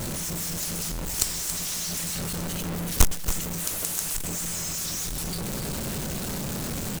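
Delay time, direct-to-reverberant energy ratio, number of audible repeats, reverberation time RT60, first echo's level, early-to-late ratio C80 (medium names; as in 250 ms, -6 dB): 278 ms, no reverb, 1, no reverb, -10.5 dB, no reverb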